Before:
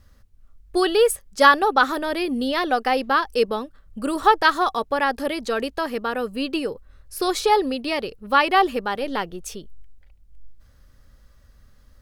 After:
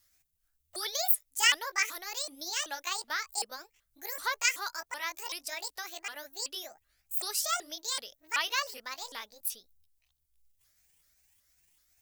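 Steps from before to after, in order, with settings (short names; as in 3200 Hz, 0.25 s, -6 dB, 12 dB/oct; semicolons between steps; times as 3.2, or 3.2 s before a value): repeated pitch sweeps +10 st, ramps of 0.38 s; pre-emphasis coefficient 0.97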